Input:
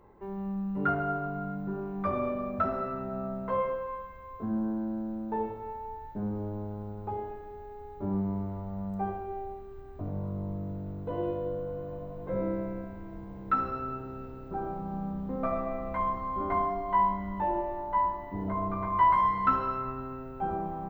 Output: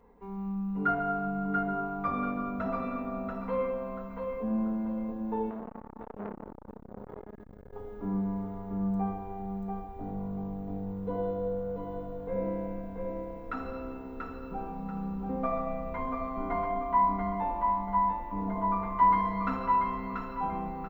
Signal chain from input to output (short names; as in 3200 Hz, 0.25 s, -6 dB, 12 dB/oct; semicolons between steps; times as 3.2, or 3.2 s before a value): comb 4.2 ms, depth 98%; feedback echo 0.686 s, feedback 31%, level -4 dB; 5.5–7.73 core saturation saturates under 840 Hz; gain -4.5 dB